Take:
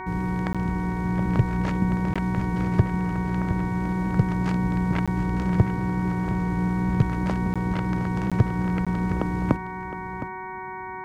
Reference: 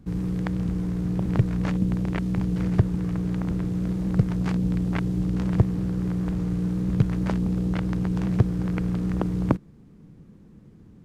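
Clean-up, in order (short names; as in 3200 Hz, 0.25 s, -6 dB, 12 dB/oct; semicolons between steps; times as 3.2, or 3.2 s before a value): de-hum 373.5 Hz, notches 6; notch 940 Hz, Q 30; interpolate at 0.53/2.14/5.06/7.54/8.3/8.85, 16 ms; inverse comb 0.713 s -12.5 dB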